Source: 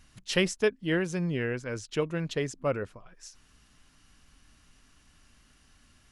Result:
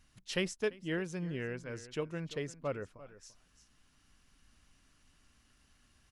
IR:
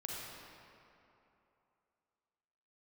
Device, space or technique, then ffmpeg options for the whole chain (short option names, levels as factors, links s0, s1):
ducked delay: -filter_complex "[0:a]asplit=3[s0][s1][s2];[s1]adelay=342,volume=0.668[s3];[s2]apad=whole_len=284800[s4];[s3][s4]sidechaincompress=threshold=0.0112:ratio=20:attack=43:release=1470[s5];[s0][s5]amix=inputs=2:normalize=0,volume=0.398"